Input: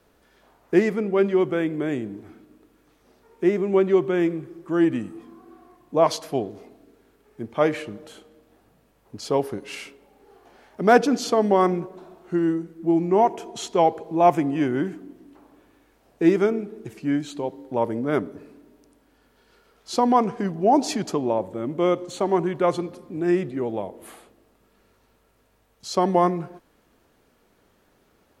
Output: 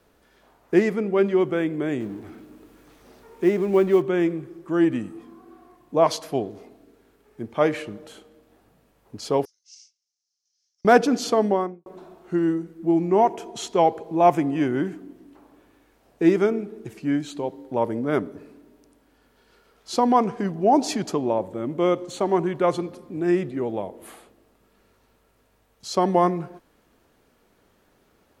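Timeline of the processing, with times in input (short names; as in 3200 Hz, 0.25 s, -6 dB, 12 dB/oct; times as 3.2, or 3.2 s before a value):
2–4.02 G.711 law mismatch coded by mu
9.45–10.85 Butterworth band-pass 5700 Hz, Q 3.9
11.37–11.86 studio fade out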